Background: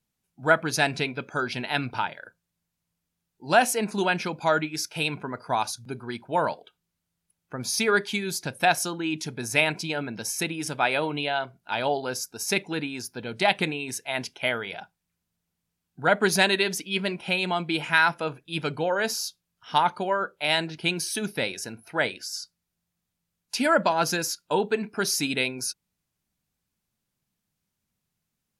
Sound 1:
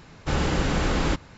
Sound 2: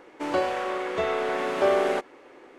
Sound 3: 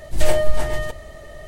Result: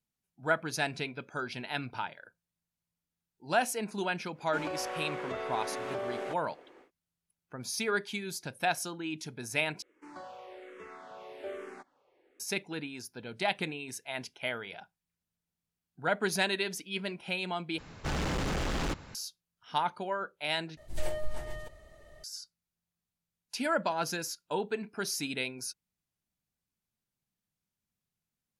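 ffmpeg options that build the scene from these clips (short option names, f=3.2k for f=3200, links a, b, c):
-filter_complex "[2:a]asplit=2[a][b];[0:a]volume=-8.5dB[c];[a]acompressor=threshold=-25dB:ratio=6:attack=3.2:release=140:knee=1:detection=peak[d];[b]asplit=2[e][f];[f]afreqshift=-1.2[g];[e][g]amix=inputs=2:normalize=1[h];[1:a]asoftclip=type=hard:threshold=-28dB[i];[c]asplit=4[j][k][l][m];[j]atrim=end=9.824[n];[h]atrim=end=2.58,asetpts=PTS-STARTPTS,volume=-17dB[o];[k]atrim=start=12.396:end=17.784[p];[i]atrim=end=1.37,asetpts=PTS-STARTPTS,volume=-2dB[q];[l]atrim=start=19.146:end=20.774[r];[3:a]atrim=end=1.47,asetpts=PTS-STARTPTS,volume=-16.5dB[s];[m]atrim=start=22.236[t];[d]atrim=end=2.58,asetpts=PTS-STARTPTS,volume=-7.5dB,afade=t=in:d=0.1,afade=t=out:st=2.48:d=0.1,adelay=190953S[u];[n][o]acrossfade=d=0.004:c1=hsin:c2=hsin[v];[v][p]acrossfade=d=0.004:c1=hsin:c2=hsin[w];[w][q]acrossfade=d=0.004:c1=hsin:c2=hsin[x];[x][r]acrossfade=d=0.004:c1=hsin:c2=hsin[y];[y][s]acrossfade=d=0.004:c1=hsin:c2=hsin[z];[z][t]acrossfade=d=0.004:c1=hsin:c2=hsin[aa];[aa][u]amix=inputs=2:normalize=0"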